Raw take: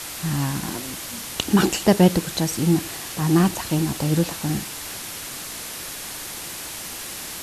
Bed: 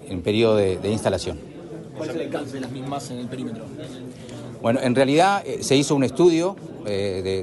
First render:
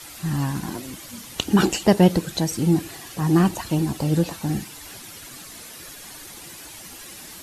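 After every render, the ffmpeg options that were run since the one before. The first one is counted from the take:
-af "afftdn=nr=10:nf=-34"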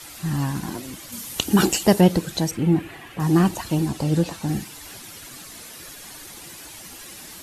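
-filter_complex "[0:a]asettb=1/sr,asplit=3[a][b][c];[a]atrim=end=1.124[d];[b]atrim=start=1.12:end=2.01,asetpts=PTS-STARTPTS,afade=t=in:d=0.004:c=qsin,afade=t=out:st=0.886:d=0.004:c=qsin,highshelf=f=8k:g=11[e];[c]atrim=start=2.006[f];[d][e]acrossfade=d=0.004:c1=hsin:c2=qsin[g];[g][f]acrossfade=d=0.004:c1=qsin:c2=hsin,asettb=1/sr,asplit=3[h][i][j];[h]atrim=end=2.514[k];[i]atrim=start=2.51:end=3.2,asetpts=PTS-STARTPTS,afade=t=in:d=0.004:c=qsin,afade=t=out:st=0.686:d=0.004:c=qsin,highshelf=f=3.6k:t=q:w=1.5:g=-11.5[l];[j]atrim=start=3.196[m];[k][l]acrossfade=d=0.004:c1=hsin:c2=qsin[n];[n][m]acrossfade=d=0.004:c1=qsin:c2=hsin,asettb=1/sr,asplit=3[o][p][q];[o]atrim=end=3.884[r];[p]atrim=start=3.88:end=4.48,asetpts=PTS-STARTPTS,afade=t=in:d=0.004:c=qsin,afade=t=out:st=0.596:d=0.004:c=qsin,lowpass=11k[s];[q]atrim=start=4.476[t];[r][s]acrossfade=d=0.004:c1=hsin:c2=qsin[u];[u][t]acrossfade=d=0.004:c1=qsin:c2=hsin"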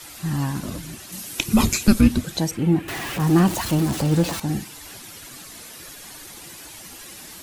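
-filter_complex "[0:a]asettb=1/sr,asplit=3[a][b][c];[a]atrim=end=0.634[d];[b]atrim=start=0.63:end=2.24,asetpts=PTS-STARTPTS,afade=t=in:d=0.004:c=qsin,afade=t=out:st=1.606:d=0.004:c=qsin,afreqshift=-420[e];[c]atrim=start=2.236[f];[d][e]acrossfade=d=0.004:c1=hsin:c2=qsin[g];[g][f]acrossfade=d=0.004:c1=qsin:c2=hsin,asettb=1/sr,asplit=3[h][i][j];[h]atrim=end=2.884[k];[i]atrim=start=2.88:end=4.4,asetpts=PTS-STARTPTS,afade=t=in:d=0.004:c=qsin,afade=t=out:st=1.516:d=0.004:c=qsin,aeval=exprs='val(0)+0.5*0.0501*sgn(val(0))':c=same[l];[j]atrim=start=4.396[m];[k][l]acrossfade=d=0.004:c1=hsin:c2=qsin[n];[n][m]acrossfade=d=0.004:c1=qsin:c2=hsin"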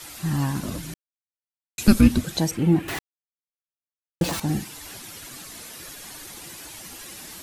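-filter_complex "[0:a]asplit=5[a][b][c][d][e];[a]atrim=end=0.94,asetpts=PTS-STARTPTS,afade=t=out:st=0.936:d=0.004:c=hsin[f];[b]atrim=start=0.94:end=1.78,asetpts=PTS-STARTPTS,volume=0[g];[c]atrim=start=1.78:end=2.99,asetpts=PTS-STARTPTS,afade=t=in:d=0.004:c=hsin,afade=t=out:st=1.206:d=0.004:c=hsin[h];[d]atrim=start=2.99:end=4.21,asetpts=PTS-STARTPTS,volume=0[i];[e]atrim=start=4.21,asetpts=PTS-STARTPTS,afade=t=in:d=0.004:c=hsin[j];[f][g][h][i][j]concat=n=5:v=0:a=1"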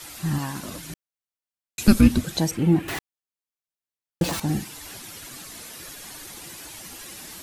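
-filter_complex "[0:a]asettb=1/sr,asplit=3[a][b][c];[a]atrim=end=0.384[d];[b]atrim=start=0.38:end=0.9,asetpts=PTS-STARTPTS,afade=t=in:d=0.004:c=qsin,afade=t=out:st=0.516:d=0.004:c=qsin,lowshelf=f=310:g=-10[e];[c]atrim=start=0.896[f];[d][e]acrossfade=d=0.004:c1=hsin:c2=qsin[g];[g][f]acrossfade=d=0.004:c1=qsin:c2=hsin"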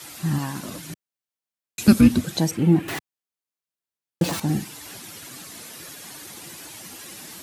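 -af "highpass=120,lowshelf=f=230:g=4.5"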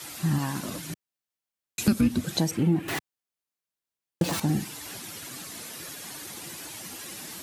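-af "acompressor=threshold=-21dB:ratio=3"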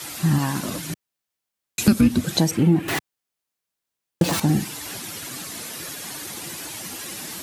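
-af "volume=6dB"

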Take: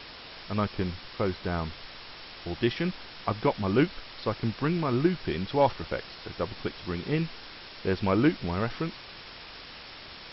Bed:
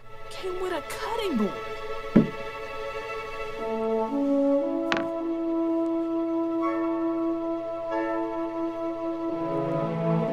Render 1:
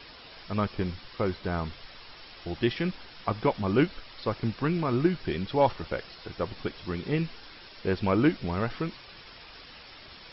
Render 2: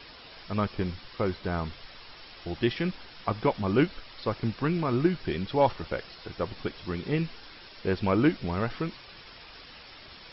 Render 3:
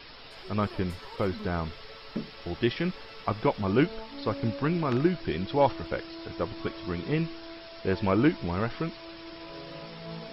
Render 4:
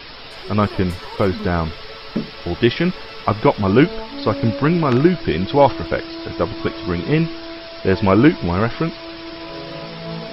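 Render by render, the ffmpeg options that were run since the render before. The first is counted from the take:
-af "afftdn=nr=7:nf=-45"
-af anull
-filter_complex "[1:a]volume=-16dB[a];[0:a][a]amix=inputs=2:normalize=0"
-af "volume=11dB,alimiter=limit=-1dB:level=0:latency=1"

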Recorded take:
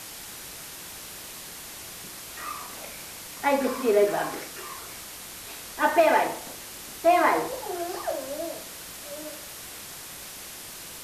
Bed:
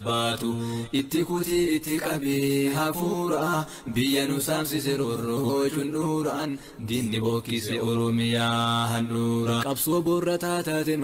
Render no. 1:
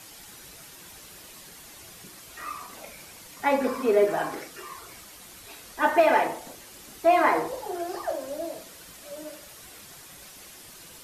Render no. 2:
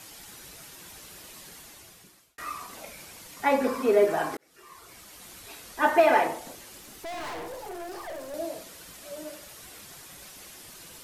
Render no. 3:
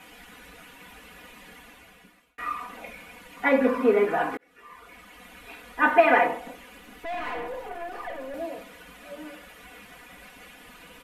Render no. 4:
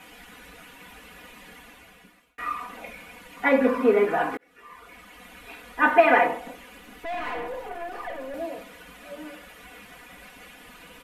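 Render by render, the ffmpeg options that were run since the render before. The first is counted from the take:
-af "afftdn=nr=8:nf=-41"
-filter_complex "[0:a]asettb=1/sr,asplit=3[a][b][c];[a]atrim=end=6.794[d];[b]atrim=start=6.79:end=8.34,asetpts=PTS-STARTPTS,afade=t=in:d=0.004:c=qsin,afade=t=out:st=1.546:d=0.004:c=qsin,aeval=exprs='(tanh(56.2*val(0)+0.3)-tanh(0.3))/56.2':c=same[e];[c]atrim=start=8.336[f];[d][e]acrossfade=d=0.004:c1=hsin:c2=qsin[g];[g][f]acrossfade=d=0.004:c1=qsin:c2=hsin,asplit=3[h][i][j];[h]atrim=end=2.38,asetpts=PTS-STARTPTS,afade=t=out:st=1.55:d=0.83[k];[i]atrim=start=2.38:end=4.37,asetpts=PTS-STARTPTS,afade=t=in:d=0.004:c=hsin,afade=t=out:st=1.986:d=0.004:c=hsin[l];[j]atrim=start=4.37,asetpts=PTS-STARTPTS,afade=t=in:d=0.9[m];[k][l][m]concat=n=3:v=0:a=1"
-af "highshelf=f=3.6k:t=q:w=1.5:g=-12,aecho=1:1:4.1:0.87"
-af "volume=1dB"

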